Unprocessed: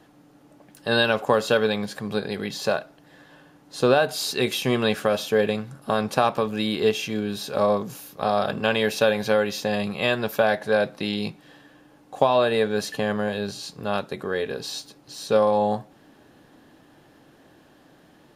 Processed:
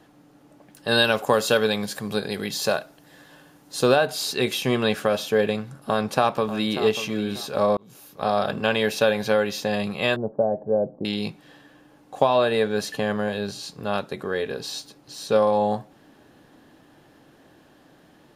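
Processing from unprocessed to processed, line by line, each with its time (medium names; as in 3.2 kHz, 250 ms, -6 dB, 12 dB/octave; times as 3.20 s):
0.88–3.96 s: treble shelf 5.6 kHz +11 dB
5.80–6.81 s: echo throw 590 ms, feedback 25%, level -12 dB
7.77–8.28 s: fade in
10.16–11.05 s: inverse Chebyshev low-pass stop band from 3.1 kHz, stop band 70 dB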